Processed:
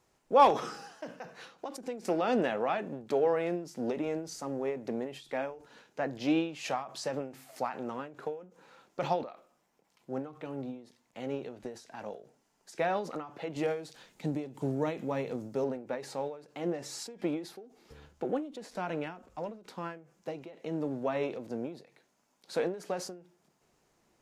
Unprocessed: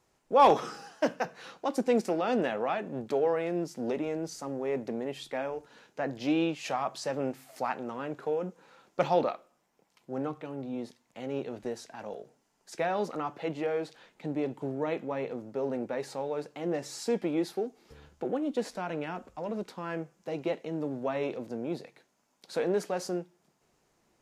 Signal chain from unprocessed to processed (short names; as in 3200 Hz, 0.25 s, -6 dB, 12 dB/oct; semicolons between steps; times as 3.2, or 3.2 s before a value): 13.56–15.64 tone controls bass +6 dB, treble +10 dB; ending taper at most 120 dB/s